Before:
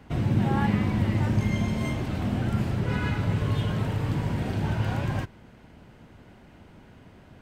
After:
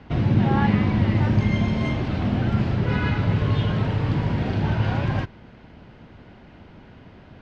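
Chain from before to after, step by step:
low-pass filter 5,100 Hz 24 dB per octave
level +4.5 dB

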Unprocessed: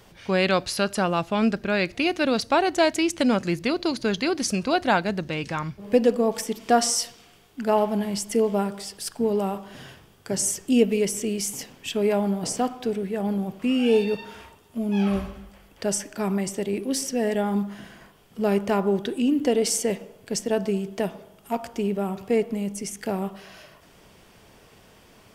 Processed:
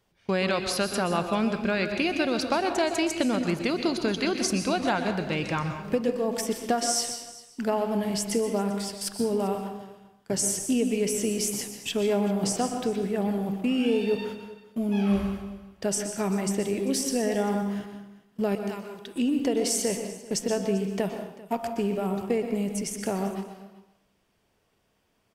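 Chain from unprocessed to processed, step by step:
noise gate −39 dBFS, range −19 dB
0:18.55–0:19.16: guitar amp tone stack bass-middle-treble 5-5-5
downward compressor, threshold −22 dBFS, peak gain reduction 9.5 dB
single-tap delay 392 ms −19.5 dB
dense smooth reverb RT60 0.67 s, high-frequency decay 0.85×, pre-delay 110 ms, DRR 6.5 dB

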